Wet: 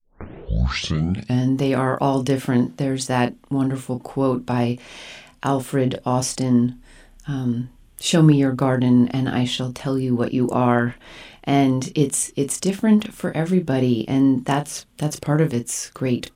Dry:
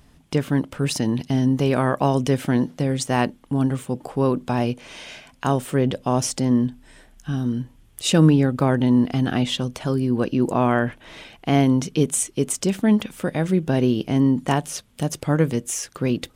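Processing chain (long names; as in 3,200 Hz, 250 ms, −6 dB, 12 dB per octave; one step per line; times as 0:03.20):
turntable start at the beginning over 1.42 s
double-tracking delay 33 ms −8.5 dB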